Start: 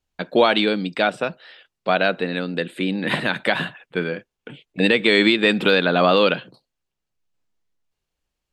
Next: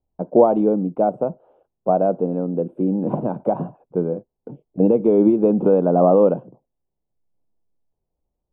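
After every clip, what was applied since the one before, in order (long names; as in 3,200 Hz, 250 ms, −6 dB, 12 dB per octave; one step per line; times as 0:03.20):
inverse Chebyshev low-pass filter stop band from 1,700 Hz, stop band 40 dB
level +3.5 dB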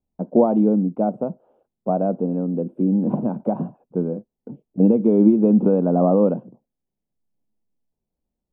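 parametric band 220 Hz +10.5 dB 0.73 octaves
level −5 dB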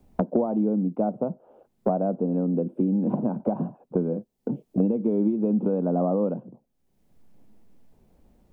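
multiband upward and downward compressor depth 100%
level −6.5 dB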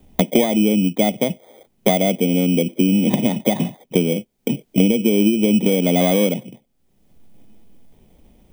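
samples in bit-reversed order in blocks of 16 samples
level +7.5 dB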